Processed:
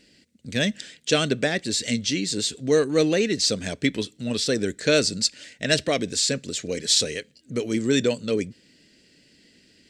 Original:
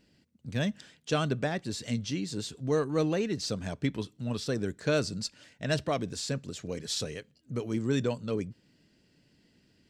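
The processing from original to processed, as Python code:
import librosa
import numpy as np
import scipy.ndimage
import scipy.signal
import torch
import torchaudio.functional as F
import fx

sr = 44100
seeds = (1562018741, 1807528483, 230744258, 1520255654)

y = fx.graphic_eq(x, sr, hz=(125, 250, 500, 1000, 2000, 4000, 8000), db=(-4, 4, 6, -7, 9, 7, 11))
y = F.gain(torch.from_numpy(y), 3.0).numpy()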